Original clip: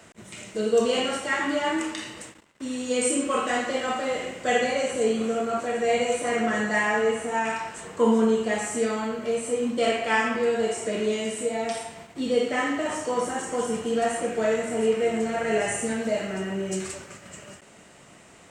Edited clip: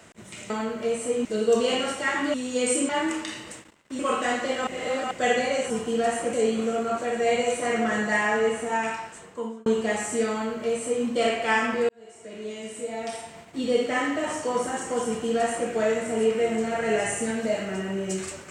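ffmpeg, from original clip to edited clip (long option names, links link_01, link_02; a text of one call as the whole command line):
ffmpeg -i in.wav -filter_complex "[0:a]asplit=12[link_01][link_02][link_03][link_04][link_05][link_06][link_07][link_08][link_09][link_10][link_11][link_12];[link_01]atrim=end=0.502[link_13];[link_02]atrim=start=8.928:end=9.682[link_14];[link_03]atrim=start=0.498:end=1.592[link_15];[link_04]atrim=start=2.688:end=3.242[link_16];[link_05]atrim=start=1.588:end=2.692[link_17];[link_06]atrim=start=3.238:end=3.922[link_18];[link_07]atrim=start=3.918:end=4.362,asetpts=PTS-STARTPTS,areverse[link_19];[link_08]atrim=start=4.358:end=4.952[link_20];[link_09]atrim=start=13.678:end=14.312[link_21];[link_10]atrim=start=4.948:end=8.28,asetpts=PTS-STARTPTS,afade=type=out:start_time=2.452:duration=0.88[link_22];[link_11]atrim=start=8.28:end=10.51,asetpts=PTS-STARTPTS,afade=type=in:duration=0.004:curve=hsin,afade=type=out:start_time=2.226:duration=0.004:curve=hsin[link_23];[link_12]atrim=start=10.51,asetpts=PTS-STARTPTS,afade=type=in:duration=1.8[link_24];[link_13][link_14]acrossfade=duration=0.004:curve1=hsin:curve2=hsin[link_25];[link_25][link_15]acrossfade=duration=0.004:curve1=hsin:curve2=hsin[link_26];[link_26][link_16]acrossfade=duration=0.004:curve1=hsin:curve2=hsin[link_27];[link_27][link_17]acrossfade=duration=0.004:curve1=hsin:curve2=hsin[link_28];[link_28][link_18]acrossfade=duration=0.004:curve1=hsin:curve2=hsin[link_29];[link_29][link_19]acrossfade=duration=0.004:curve1=hsin:curve2=hsin[link_30];[link_30][link_20]acrossfade=duration=0.004:curve1=hsin:curve2=hsin[link_31];[link_31][link_21]acrossfade=duration=0.004:curve1=hsin:curve2=hsin[link_32];[link_22][link_23][link_24]concat=n=3:v=0:a=1[link_33];[link_32][link_33]acrossfade=duration=0.004:curve1=hsin:curve2=hsin" out.wav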